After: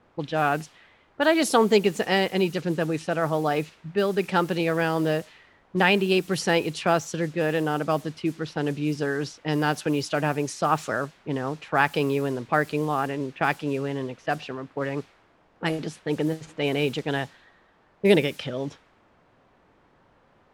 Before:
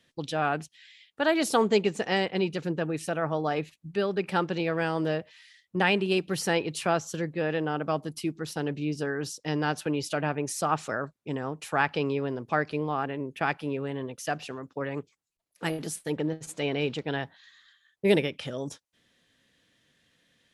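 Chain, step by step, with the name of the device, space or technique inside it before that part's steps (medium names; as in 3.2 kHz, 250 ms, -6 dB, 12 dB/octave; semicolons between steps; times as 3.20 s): cassette deck with a dynamic noise filter (white noise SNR 23 dB; level-controlled noise filter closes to 920 Hz, open at -24 dBFS); trim +4 dB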